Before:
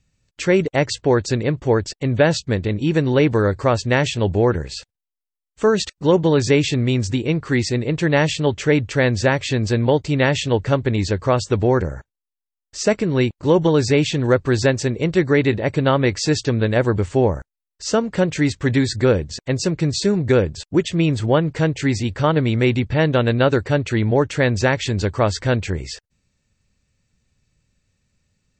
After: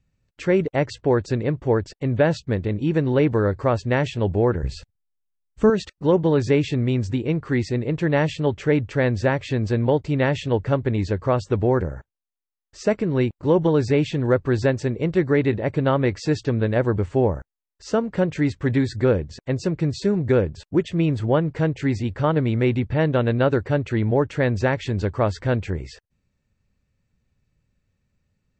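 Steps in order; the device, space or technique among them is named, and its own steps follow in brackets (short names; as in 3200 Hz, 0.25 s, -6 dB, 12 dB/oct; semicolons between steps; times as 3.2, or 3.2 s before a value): through cloth (high shelf 3400 Hz -14 dB); 4.63–5.7 tone controls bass +13 dB, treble +4 dB; gain -2.5 dB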